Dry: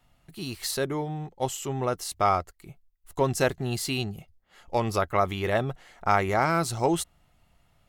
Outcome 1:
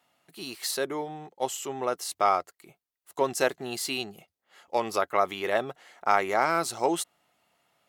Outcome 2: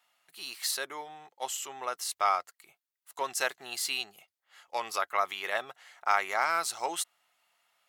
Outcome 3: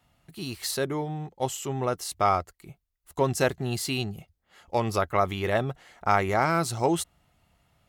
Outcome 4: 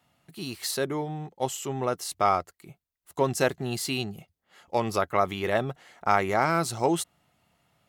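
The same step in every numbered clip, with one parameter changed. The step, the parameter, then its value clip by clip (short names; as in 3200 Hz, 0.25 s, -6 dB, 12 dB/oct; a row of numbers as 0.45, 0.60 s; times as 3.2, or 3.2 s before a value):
HPF, cutoff: 330, 1000, 45, 130 Hz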